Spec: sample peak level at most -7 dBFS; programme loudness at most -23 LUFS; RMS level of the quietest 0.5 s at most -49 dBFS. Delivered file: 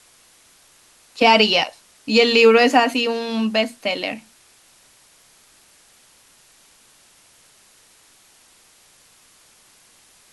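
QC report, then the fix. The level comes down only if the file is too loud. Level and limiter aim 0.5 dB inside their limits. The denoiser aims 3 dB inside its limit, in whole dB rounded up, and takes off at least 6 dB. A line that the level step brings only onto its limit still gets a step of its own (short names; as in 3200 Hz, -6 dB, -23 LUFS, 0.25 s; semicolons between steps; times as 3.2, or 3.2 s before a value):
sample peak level -2.5 dBFS: fail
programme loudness -17.0 LUFS: fail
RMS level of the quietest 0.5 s -54 dBFS: OK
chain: gain -6.5 dB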